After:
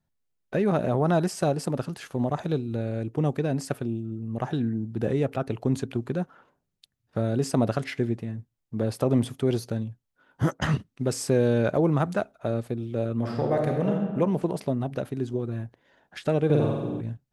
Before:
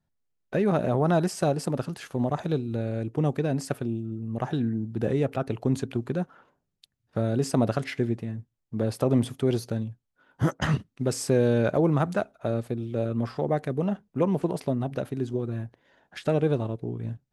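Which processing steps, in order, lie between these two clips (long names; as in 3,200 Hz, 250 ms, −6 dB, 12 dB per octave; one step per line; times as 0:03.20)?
0:13.19–0:14.08: thrown reverb, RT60 1.4 s, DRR 0.5 dB
0:16.45–0:17.01: flutter between parallel walls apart 8.1 metres, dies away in 1.2 s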